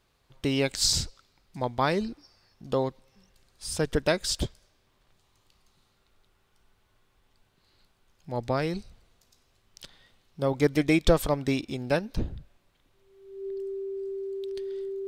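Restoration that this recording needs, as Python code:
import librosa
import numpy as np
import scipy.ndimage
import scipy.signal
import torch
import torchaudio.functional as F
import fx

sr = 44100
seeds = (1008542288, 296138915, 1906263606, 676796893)

y = fx.notch(x, sr, hz=390.0, q=30.0)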